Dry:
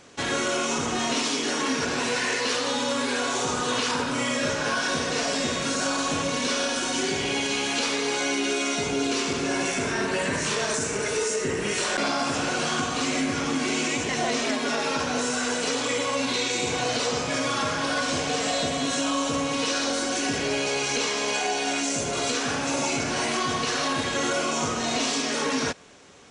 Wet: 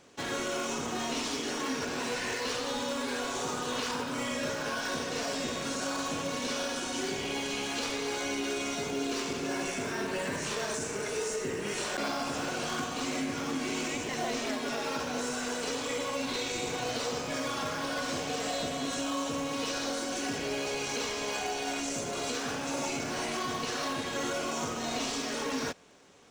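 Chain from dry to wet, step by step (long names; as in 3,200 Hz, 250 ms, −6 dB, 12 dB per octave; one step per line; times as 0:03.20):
low-shelf EQ 76 Hz −9 dB
in parallel at −9.5 dB: sample-and-hold swept by an LFO 17×, swing 60% 2.8 Hz
on the sum: level −8.5 dB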